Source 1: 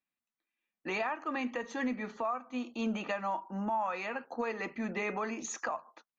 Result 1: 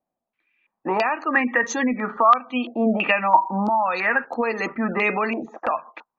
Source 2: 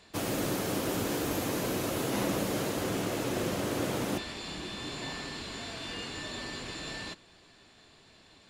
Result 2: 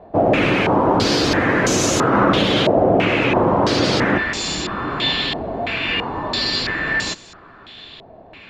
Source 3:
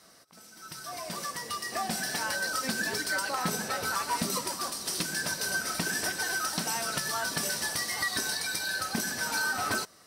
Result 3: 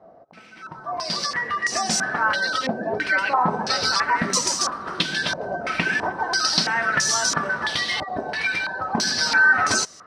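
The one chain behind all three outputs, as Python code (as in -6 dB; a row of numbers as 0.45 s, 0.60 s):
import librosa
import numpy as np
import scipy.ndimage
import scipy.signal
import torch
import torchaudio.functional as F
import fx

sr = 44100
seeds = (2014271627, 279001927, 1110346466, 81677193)

y = fx.spec_gate(x, sr, threshold_db=-30, keep='strong')
y = fx.filter_held_lowpass(y, sr, hz=3.0, low_hz=690.0, high_hz=6500.0)
y = y * 10.0 ** (-3 / 20.0) / np.max(np.abs(y))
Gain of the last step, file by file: +11.0 dB, +13.5 dB, +6.5 dB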